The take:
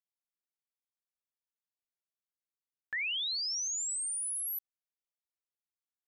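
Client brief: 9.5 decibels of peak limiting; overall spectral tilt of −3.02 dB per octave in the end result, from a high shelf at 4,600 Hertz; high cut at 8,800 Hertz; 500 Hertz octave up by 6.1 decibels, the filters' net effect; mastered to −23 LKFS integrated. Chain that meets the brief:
low-pass filter 8,800 Hz
parametric band 500 Hz +7.5 dB
high-shelf EQ 4,600 Hz +7 dB
level +15 dB
brickwall limiter −22.5 dBFS

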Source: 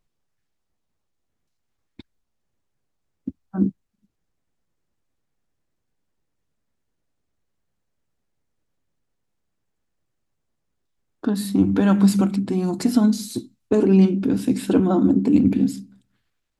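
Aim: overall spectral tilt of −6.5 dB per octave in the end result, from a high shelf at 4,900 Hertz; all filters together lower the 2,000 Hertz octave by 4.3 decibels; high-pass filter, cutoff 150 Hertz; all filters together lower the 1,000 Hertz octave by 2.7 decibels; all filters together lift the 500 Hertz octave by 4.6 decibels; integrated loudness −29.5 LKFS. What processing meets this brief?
high-pass filter 150 Hz
parametric band 500 Hz +8 dB
parametric band 1,000 Hz −7.5 dB
parametric band 2,000 Hz −4.5 dB
high-shelf EQ 4,900 Hz +6 dB
level −11 dB

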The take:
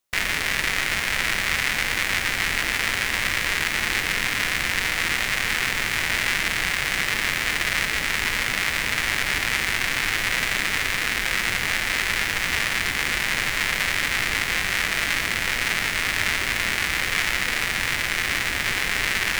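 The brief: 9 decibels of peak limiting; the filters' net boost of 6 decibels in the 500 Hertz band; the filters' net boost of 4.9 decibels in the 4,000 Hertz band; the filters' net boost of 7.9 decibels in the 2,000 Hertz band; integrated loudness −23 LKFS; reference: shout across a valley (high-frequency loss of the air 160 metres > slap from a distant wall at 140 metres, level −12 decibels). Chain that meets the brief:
parametric band 500 Hz +7.5 dB
parametric band 2,000 Hz +8.5 dB
parametric band 4,000 Hz +8 dB
brickwall limiter −6 dBFS
high-frequency loss of the air 160 metres
slap from a distant wall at 140 metres, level −12 dB
level −3.5 dB

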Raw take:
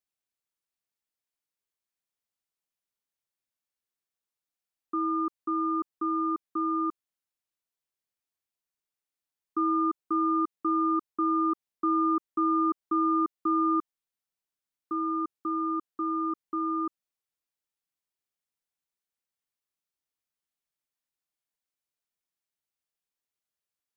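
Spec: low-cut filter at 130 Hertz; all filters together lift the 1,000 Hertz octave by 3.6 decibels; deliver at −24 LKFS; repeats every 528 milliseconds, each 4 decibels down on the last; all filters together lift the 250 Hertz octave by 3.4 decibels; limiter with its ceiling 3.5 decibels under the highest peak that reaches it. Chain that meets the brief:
high-pass filter 130 Hz
parametric band 250 Hz +5 dB
parametric band 1,000 Hz +4.5 dB
brickwall limiter −18.5 dBFS
repeating echo 528 ms, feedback 63%, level −4 dB
level +2 dB

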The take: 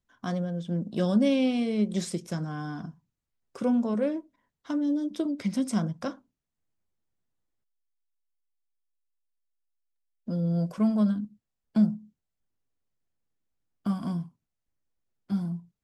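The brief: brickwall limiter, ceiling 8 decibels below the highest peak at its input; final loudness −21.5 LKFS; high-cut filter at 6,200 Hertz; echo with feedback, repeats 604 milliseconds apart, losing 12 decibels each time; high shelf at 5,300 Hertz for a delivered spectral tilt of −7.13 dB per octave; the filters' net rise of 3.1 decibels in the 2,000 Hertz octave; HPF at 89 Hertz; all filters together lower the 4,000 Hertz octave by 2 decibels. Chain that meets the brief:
high-pass filter 89 Hz
low-pass filter 6,200 Hz
parametric band 2,000 Hz +5 dB
parametric band 4,000 Hz −7 dB
high-shelf EQ 5,300 Hz +7 dB
brickwall limiter −21.5 dBFS
repeating echo 604 ms, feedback 25%, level −12 dB
level +10 dB

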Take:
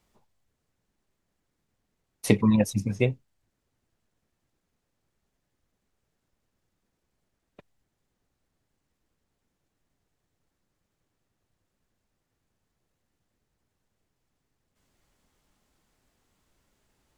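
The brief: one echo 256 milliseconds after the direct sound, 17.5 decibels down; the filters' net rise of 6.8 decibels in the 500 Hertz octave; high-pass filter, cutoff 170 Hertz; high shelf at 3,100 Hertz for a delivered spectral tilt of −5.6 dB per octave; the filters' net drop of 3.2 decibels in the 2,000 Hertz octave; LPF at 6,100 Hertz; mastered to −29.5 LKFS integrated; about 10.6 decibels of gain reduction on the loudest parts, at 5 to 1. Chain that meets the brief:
high-pass filter 170 Hz
low-pass filter 6,100 Hz
parametric band 500 Hz +8 dB
parametric band 2,000 Hz −6.5 dB
high-shelf EQ 3,100 Hz +5.5 dB
downward compressor 5 to 1, threshold −24 dBFS
single-tap delay 256 ms −17.5 dB
level +1 dB

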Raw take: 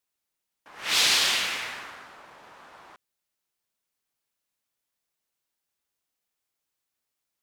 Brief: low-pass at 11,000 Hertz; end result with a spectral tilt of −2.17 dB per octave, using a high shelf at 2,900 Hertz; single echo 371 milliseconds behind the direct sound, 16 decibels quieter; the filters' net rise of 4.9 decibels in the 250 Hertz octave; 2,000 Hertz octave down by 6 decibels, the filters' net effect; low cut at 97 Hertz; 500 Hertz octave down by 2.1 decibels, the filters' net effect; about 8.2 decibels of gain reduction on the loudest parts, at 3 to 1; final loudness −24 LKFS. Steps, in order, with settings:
high-pass filter 97 Hz
low-pass filter 11,000 Hz
parametric band 250 Hz +8 dB
parametric band 500 Hz −4.5 dB
parametric band 2,000 Hz −6 dB
high-shelf EQ 2,900 Hz −3.5 dB
downward compressor 3 to 1, threshold −33 dBFS
single-tap delay 371 ms −16 dB
level +10 dB

